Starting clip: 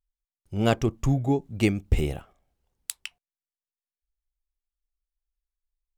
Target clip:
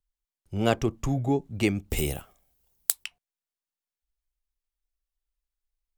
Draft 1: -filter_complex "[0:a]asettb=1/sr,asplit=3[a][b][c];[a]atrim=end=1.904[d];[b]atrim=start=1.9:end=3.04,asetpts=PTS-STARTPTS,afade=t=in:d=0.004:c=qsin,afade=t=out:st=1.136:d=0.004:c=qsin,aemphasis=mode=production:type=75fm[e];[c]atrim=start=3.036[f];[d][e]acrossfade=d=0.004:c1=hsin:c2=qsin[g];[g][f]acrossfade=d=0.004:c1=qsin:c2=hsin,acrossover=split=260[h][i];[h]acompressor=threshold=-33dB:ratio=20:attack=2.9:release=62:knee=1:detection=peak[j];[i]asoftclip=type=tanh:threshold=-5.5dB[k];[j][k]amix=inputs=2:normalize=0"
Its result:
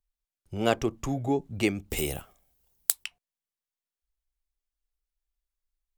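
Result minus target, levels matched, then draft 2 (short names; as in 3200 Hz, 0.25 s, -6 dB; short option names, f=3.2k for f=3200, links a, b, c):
compressor: peak gain reduction +7 dB
-filter_complex "[0:a]asettb=1/sr,asplit=3[a][b][c];[a]atrim=end=1.904[d];[b]atrim=start=1.9:end=3.04,asetpts=PTS-STARTPTS,afade=t=in:d=0.004:c=qsin,afade=t=out:st=1.136:d=0.004:c=qsin,aemphasis=mode=production:type=75fm[e];[c]atrim=start=3.036[f];[d][e]acrossfade=d=0.004:c1=hsin:c2=qsin[g];[g][f]acrossfade=d=0.004:c1=qsin:c2=hsin,acrossover=split=260[h][i];[h]acompressor=threshold=-25.5dB:ratio=20:attack=2.9:release=62:knee=1:detection=peak[j];[i]asoftclip=type=tanh:threshold=-5.5dB[k];[j][k]amix=inputs=2:normalize=0"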